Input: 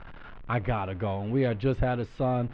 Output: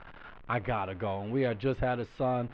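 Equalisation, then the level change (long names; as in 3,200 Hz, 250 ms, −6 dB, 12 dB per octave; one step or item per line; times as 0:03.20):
high-frequency loss of the air 53 metres
low-shelf EQ 260 Hz −8 dB
0.0 dB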